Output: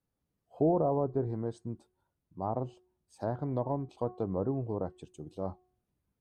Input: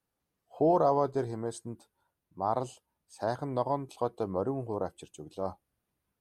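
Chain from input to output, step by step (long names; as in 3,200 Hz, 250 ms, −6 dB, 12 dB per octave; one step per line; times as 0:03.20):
treble cut that deepens with the level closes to 870 Hz, closed at −24 dBFS
low-shelf EQ 450 Hz +12 dB
hum removal 365.3 Hz, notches 5
level −7.5 dB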